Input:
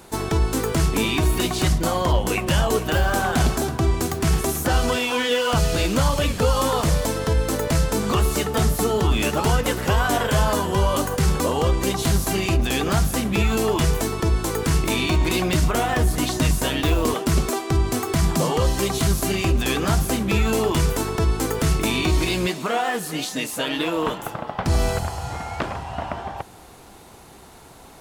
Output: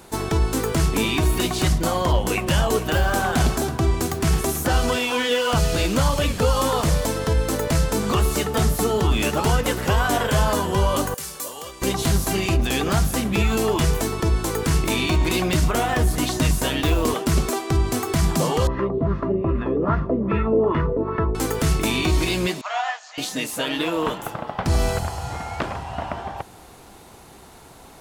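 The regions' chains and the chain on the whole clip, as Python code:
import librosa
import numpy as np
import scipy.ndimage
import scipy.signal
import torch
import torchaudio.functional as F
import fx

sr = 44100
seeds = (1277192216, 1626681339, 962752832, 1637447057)

y = fx.chain(x, sr, fx.riaa(side='recording'),
    fx.comb_fb(f0_hz=580.0, decay_s=0.3, harmonics='all', damping=0.0, mix_pct=80), at=(11.14, 11.82))
y = fx.chain(y, sr, fx.filter_lfo_lowpass(shape='sine', hz=2.5, low_hz=490.0, high_hz=1700.0, q=2.1),
    fx.air_absorb(metres=140.0),
    fx.notch_comb(f0_hz=770.0), at=(18.67, 21.35))
y = fx.chain(y, sr, fx.cheby1_bandpass(low_hz=620.0, high_hz=7000.0, order=5),
    fx.upward_expand(threshold_db=-35.0, expansion=1.5), at=(22.61, 23.18))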